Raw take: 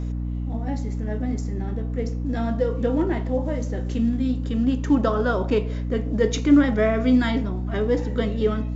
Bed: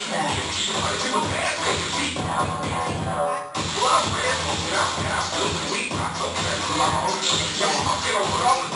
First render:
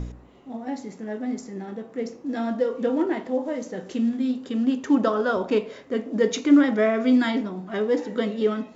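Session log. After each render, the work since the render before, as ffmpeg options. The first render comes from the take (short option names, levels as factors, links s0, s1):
-af "bandreject=f=60:t=h:w=4,bandreject=f=120:t=h:w=4,bandreject=f=180:t=h:w=4,bandreject=f=240:t=h:w=4,bandreject=f=300:t=h:w=4"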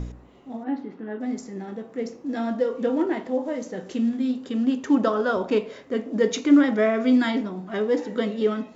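-filter_complex "[0:a]asplit=3[s0][s1][s2];[s0]afade=t=out:st=0.63:d=0.02[s3];[s1]highpass=120,equalizer=f=190:t=q:w=4:g=-4,equalizer=f=300:t=q:w=4:g=7,equalizer=f=600:t=q:w=4:g=-6,equalizer=f=1400:t=q:w=4:g=4,equalizer=f=2200:t=q:w=4:g=-6,lowpass=f=3300:w=0.5412,lowpass=f=3300:w=1.3066,afade=t=in:st=0.63:d=0.02,afade=t=out:st=1.19:d=0.02[s4];[s2]afade=t=in:st=1.19:d=0.02[s5];[s3][s4][s5]amix=inputs=3:normalize=0"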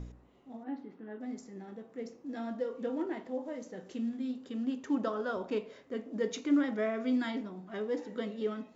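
-af "volume=0.266"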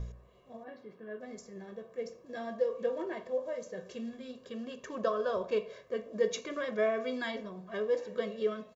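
-af "aecho=1:1:1.8:0.92"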